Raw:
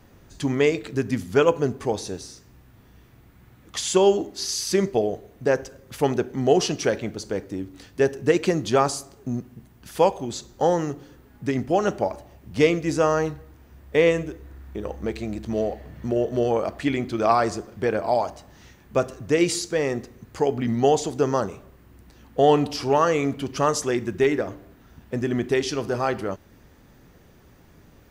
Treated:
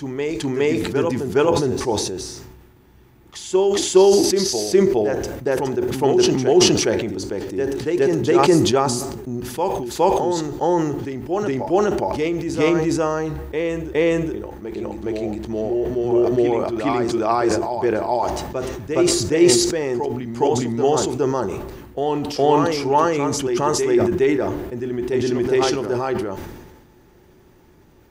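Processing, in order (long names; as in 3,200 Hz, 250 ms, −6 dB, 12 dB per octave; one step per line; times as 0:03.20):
hollow resonant body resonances 360/870 Hz, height 11 dB, ringing for 65 ms
on a send: backwards echo 414 ms −5 dB
on the sum: level that may fall only so fast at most 42 dB per second
level −2 dB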